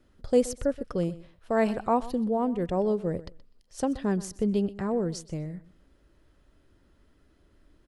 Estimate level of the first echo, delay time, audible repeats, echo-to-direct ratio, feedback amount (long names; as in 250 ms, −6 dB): −18.0 dB, 125 ms, 2, −18.0 dB, 17%